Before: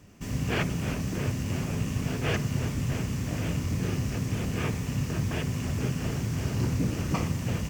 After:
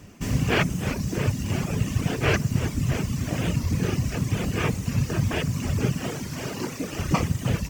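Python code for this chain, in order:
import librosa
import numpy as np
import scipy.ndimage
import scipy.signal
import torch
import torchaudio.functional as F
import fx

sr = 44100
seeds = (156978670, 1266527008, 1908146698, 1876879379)

y = fx.dereverb_blind(x, sr, rt60_s=1.8)
y = fx.highpass(y, sr, hz=fx.line((6.0, 170.0), (6.92, 430.0)), slope=12, at=(6.0, 6.92), fade=0.02)
y = fx.echo_split(y, sr, split_hz=330.0, low_ms=570, high_ms=310, feedback_pct=52, wet_db=-16)
y = fx.record_warp(y, sr, rpm=45.0, depth_cents=100.0)
y = F.gain(torch.from_numpy(y), 7.5).numpy()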